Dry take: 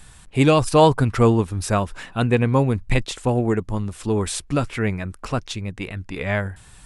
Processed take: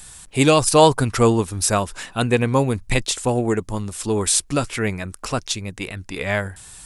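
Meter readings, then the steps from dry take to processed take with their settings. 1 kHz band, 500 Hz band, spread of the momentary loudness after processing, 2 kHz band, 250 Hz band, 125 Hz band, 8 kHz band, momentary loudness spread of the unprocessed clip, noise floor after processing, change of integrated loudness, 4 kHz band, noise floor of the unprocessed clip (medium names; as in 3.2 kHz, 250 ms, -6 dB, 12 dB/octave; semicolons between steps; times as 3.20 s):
+1.5 dB, +1.0 dB, 14 LU, +2.5 dB, -0.5 dB, -2.0 dB, +11.0 dB, 13 LU, -45 dBFS, +1.5 dB, +5.5 dB, -47 dBFS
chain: tone controls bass -4 dB, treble +10 dB; trim +1.5 dB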